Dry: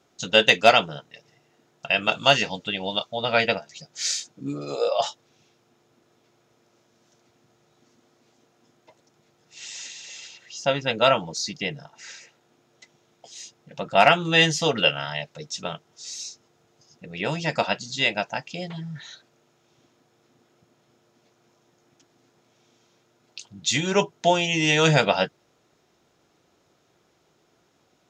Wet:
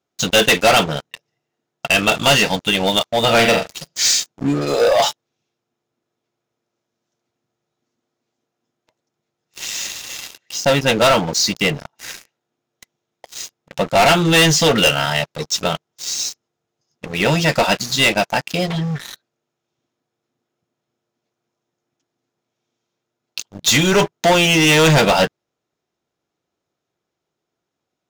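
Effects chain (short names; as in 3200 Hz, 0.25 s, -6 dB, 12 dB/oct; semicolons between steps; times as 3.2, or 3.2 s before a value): 3.21–4.01 flutter echo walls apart 7.4 m, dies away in 0.31 s; sample leveller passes 5; gain -5 dB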